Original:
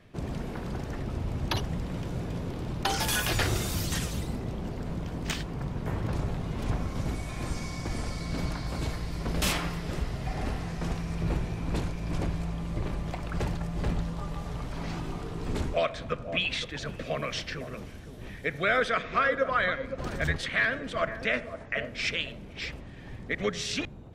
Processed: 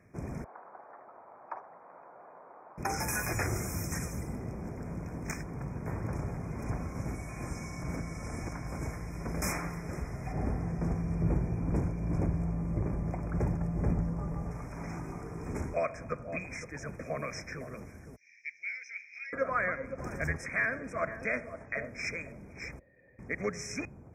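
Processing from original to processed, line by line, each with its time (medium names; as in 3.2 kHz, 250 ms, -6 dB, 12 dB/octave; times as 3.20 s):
0.44–2.78 s: Butterworth band-pass 930 Hz, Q 1.3
7.82–8.52 s: reverse
10.32–14.51 s: tilt shelf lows +6 dB, about 930 Hz
18.16–19.33 s: elliptic band-pass 2.2–5.8 kHz
22.79–23.19 s: cascade formant filter e
whole clip: FFT band-reject 2.5–5.1 kHz; high-pass 53 Hz; trim -4 dB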